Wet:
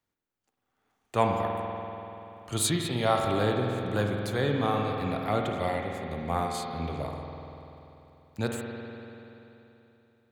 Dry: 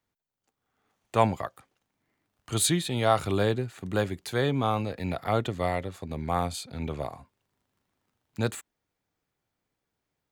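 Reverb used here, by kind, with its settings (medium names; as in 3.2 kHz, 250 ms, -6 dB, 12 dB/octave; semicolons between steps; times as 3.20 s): spring tank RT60 3.2 s, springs 48 ms, chirp 35 ms, DRR 1 dB; trim -2.5 dB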